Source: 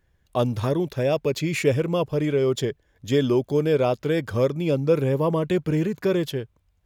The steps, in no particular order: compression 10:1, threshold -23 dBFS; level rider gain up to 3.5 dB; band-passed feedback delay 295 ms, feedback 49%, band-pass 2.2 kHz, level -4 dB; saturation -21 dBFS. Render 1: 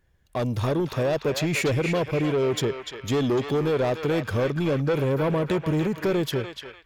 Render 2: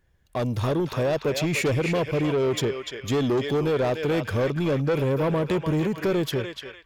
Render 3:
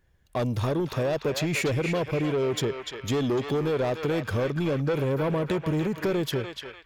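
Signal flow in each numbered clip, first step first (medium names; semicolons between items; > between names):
saturation > band-passed feedback delay > compression > level rider; band-passed feedback delay > saturation > compression > level rider; saturation > level rider > band-passed feedback delay > compression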